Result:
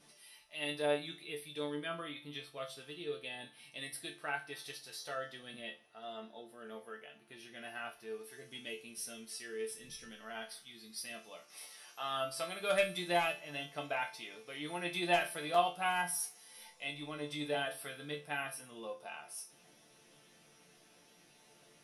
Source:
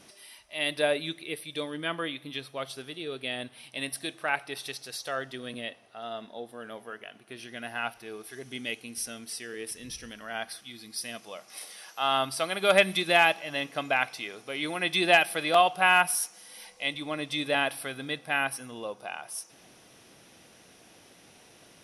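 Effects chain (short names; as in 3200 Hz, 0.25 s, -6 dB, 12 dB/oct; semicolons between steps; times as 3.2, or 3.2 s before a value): dynamic EQ 2500 Hz, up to -4 dB, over -35 dBFS, Q 0.73; resonator bank D3 minor, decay 0.27 s; gain +6 dB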